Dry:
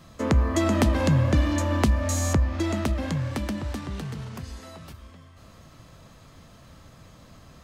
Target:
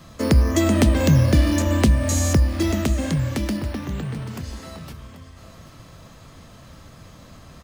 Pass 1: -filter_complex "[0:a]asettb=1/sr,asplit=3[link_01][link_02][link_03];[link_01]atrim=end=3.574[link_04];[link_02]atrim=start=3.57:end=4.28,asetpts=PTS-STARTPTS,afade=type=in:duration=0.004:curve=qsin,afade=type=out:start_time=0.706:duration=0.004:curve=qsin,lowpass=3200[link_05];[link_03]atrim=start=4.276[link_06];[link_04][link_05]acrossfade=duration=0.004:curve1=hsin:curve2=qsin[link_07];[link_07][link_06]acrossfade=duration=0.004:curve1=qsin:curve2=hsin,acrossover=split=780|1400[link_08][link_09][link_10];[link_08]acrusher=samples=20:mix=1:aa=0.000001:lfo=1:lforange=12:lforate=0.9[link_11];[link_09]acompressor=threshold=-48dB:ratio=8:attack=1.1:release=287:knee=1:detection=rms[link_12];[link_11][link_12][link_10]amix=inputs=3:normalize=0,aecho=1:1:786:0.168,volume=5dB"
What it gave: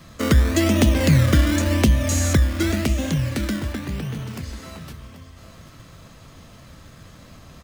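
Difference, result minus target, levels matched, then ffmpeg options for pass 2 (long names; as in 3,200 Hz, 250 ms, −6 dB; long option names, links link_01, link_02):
sample-and-hold swept by an LFO: distortion +10 dB
-filter_complex "[0:a]asettb=1/sr,asplit=3[link_01][link_02][link_03];[link_01]atrim=end=3.574[link_04];[link_02]atrim=start=3.57:end=4.28,asetpts=PTS-STARTPTS,afade=type=in:duration=0.004:curve=qsin,afade=type=out:start_time=0.706:duration=0.004:curve=qsin,lowpass=3200[link_05];[link_03]atrim=start=4.276[link_06];[link_04][link_05]acrossfade=duration=0.004:curve1=hsin:curve2=qsin[link_07];[link_07][link_06]acrossfade=duration=0.004:curve1=qsin:curve2=hsin,acrossover=split=780|1400[link_08][link_09][link_10];[link_08]acrusher=samples=7:mix=1:aa=0.000001:lfo=1:lforange=4.2:lforate=0.9[link_11];[link_09]acompressor=threshold=-48dB:ratio=8:attack=1.1:release=287:knee=1:detection=rms[link_12];[link_11][link_12][link_10]amix=inputs=3:normalize=0,aecho=1:1:786:0.168,volume=5dB"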